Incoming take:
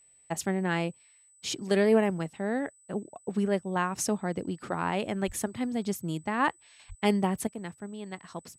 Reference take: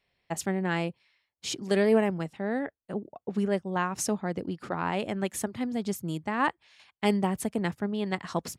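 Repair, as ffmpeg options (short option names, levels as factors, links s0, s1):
-filter_complex "[0:a]bandreject=f=8000:w=30,asplit=3[s0][s1][s2];[s0]afade=t=out:st=5.26:d=0.02[s3];[s1]highpass=f=140:w=0.5412,highpass=f=140:w=1.3066,afade=t=in:st=5.26:d=0.02,afade=t=out:st=5.38:d=0.02[s4];[s2]afade=t=in:st=5.38:d=0.02[s5];[s3][s4][s5]amix=inputs=3:normalize=0,asplit=3[s6][s7][s8];[s6]afade=t=out:st=6.88:d=0.02[s9];[s7]highpass=f=140:w=0.5412,highpass=f=140:w=1.3066,afade=t=in:st=6.88:d=0.02,afade=t=out:st=7:d=0.02[s10];[s8]afade=t=in:st=7:d=0.02[s11];[s9][s10][s11]amix=inputs=3:normalize=0,asetnsamples=n=441:p=0,asendcmd='7.47 volume volume 9.5dB',volume=1"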